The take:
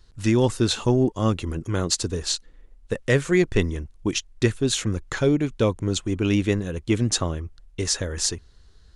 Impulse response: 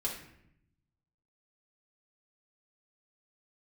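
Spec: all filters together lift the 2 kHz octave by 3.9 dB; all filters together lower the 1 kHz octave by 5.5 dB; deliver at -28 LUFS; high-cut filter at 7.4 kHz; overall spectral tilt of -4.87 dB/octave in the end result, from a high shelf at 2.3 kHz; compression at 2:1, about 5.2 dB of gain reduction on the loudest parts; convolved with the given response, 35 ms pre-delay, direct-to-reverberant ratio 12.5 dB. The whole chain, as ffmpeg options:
-filter_complex "[0:a]lowpass=7400,equalizer=f=1000:t=o:g=-9,equalizer=f=2000:t=o:g=8.5,highshelf=f=2300:g=-3.5,acompressor=threshold=0.0631:ratio=2,asplit=2[s0][s1];[1:a]atrim=start_sample=2205,adelay=35[s2];[s1][s2]afir=irnorm=-1:irlink=0,volume=0.168[s3];[s0][s3]amix=inputs=2:normalize=0"

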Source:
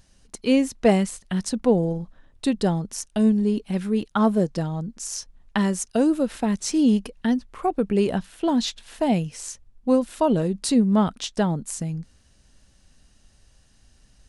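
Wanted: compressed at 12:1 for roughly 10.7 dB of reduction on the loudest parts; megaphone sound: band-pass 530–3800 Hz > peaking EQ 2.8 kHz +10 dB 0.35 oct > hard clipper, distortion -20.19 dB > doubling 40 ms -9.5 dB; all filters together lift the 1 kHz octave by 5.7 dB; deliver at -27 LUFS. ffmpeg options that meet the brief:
-filter_complex "[0:a]equalizer=f=1000:t=o:g=8,acompressor=threshold=0.0794:ratio=12,highpass=530,lowpass=3800,equalizer=f=2800:t=o:w=0.35:g=10,asoftclip=type=hard:threshold=0.126,asplit=2[s0][s1];[s1]adelay=40,volume=0.335[s2];[s0][s2]amix=inputs=2:normalize=0,volume=2.11"

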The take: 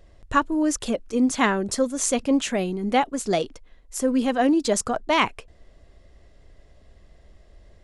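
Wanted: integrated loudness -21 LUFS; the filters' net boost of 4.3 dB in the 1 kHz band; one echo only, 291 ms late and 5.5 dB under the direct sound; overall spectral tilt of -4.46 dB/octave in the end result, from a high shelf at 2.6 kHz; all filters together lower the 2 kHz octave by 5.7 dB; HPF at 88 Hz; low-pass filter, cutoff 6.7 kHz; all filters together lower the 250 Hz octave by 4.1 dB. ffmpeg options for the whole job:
-af "highpass=88,lowpass=6700,equalizer=f=250:t=o:g=-5,equalizer=f=1000:t=o:g=8,equalizer=f=2000:t=o:g=-7.5,highshelf=f=2600:g=-5,aecho=1:1:291:0.531,volume=1.26"

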